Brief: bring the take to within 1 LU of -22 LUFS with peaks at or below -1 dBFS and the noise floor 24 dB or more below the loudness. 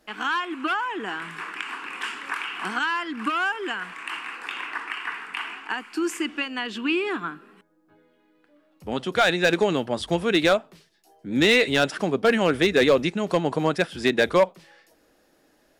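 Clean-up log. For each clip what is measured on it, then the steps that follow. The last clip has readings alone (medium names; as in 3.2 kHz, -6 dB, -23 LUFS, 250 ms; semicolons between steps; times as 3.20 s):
clipped samples 0.3%; clipping level -11.0 dBFS; loudness -24.5 LUFS; peak level -11.0 dBFS; loudness target -22.0 LUFS
-> clip repair -11 dBFS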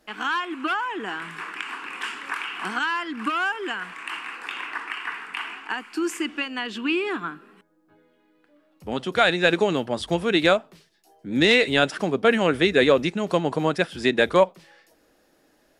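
clipped samples 0.0%; loudness -24.0 LUFS; peak level -3.5 dBFS; loudness target -22.0 LUFS
-> trim +2 dB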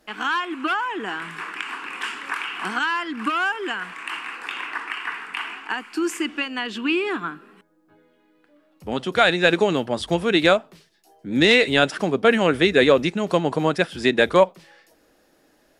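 loudness -22.0 LUFS; peak level -1.5 dBFS; noise floor -61 dBFS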